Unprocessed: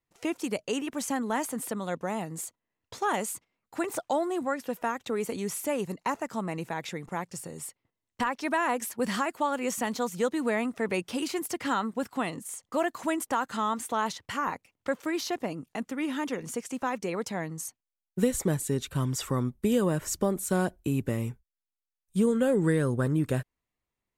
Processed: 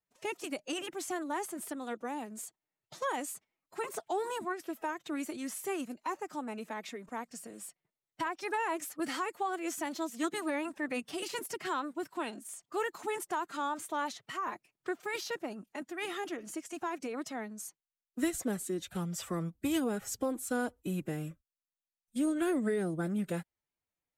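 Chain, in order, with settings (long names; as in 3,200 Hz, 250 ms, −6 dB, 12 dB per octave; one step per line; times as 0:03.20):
low-shelf EQ 79 Hz −9.5 dB
phase-vocoder pitch shift with formants kept +5 semitones
level −5.5 dB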